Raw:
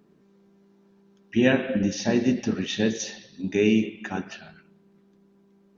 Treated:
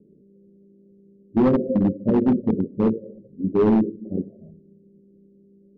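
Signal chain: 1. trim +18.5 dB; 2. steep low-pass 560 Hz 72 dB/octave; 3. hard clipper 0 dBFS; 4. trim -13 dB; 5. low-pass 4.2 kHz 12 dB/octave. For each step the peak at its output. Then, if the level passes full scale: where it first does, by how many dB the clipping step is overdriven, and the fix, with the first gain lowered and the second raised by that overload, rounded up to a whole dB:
+12.0 dBFS, +8.5 dBFS, 0.0 dBFS, -13.0 dBFS, -13.0 dBFS; step 1, 8.5 dB; step 1 +9.5 dB, step 4 -4 dB

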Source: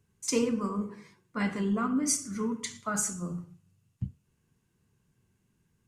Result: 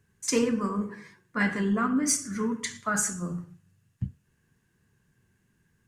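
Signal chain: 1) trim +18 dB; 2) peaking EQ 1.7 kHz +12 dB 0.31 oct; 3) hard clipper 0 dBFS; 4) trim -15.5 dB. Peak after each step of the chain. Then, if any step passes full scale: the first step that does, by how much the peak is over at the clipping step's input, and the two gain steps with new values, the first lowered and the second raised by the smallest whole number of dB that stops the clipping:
+3.5 dBFS, +3.5 dBFS, 0.0 dBFS, -15.5 dBFS; step 1, 3.5 dB; step 1 +14 dB, step 4 -11.5 dB

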